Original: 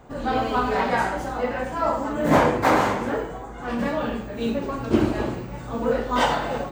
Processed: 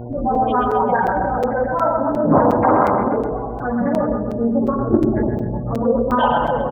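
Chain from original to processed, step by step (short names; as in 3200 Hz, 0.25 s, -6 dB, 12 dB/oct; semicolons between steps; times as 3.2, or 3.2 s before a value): bell 2800 Hz +2 dB 0.77 oct; notch 1900 Hz, Q 14; spectral gate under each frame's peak -10 dB strong; in parallel at +2.5 dB: compressor, threshold -29 dBFS, peak gain reduction 15 dB; on the sum: buzz 120 Hz, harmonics 6, -34 dBFS -4 dB/oct; feedback echo 0.13 s, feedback 46%, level -5.5 dB; reverb RT60 0.35 s, pre-delay 0.114 s, DRR 10.5 dB; crackling interface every 0.36 s, samples 256, zero, from 0.35; Doppler distortion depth 0.31 ms; gain +2 dB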